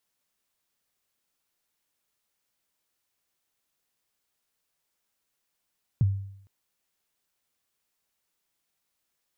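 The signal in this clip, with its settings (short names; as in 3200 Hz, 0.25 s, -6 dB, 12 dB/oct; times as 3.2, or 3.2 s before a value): kick drum length 0.46 s, from 150 Hz, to 98 Hz, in 27 ms, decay 0.70 s, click off, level -16 dB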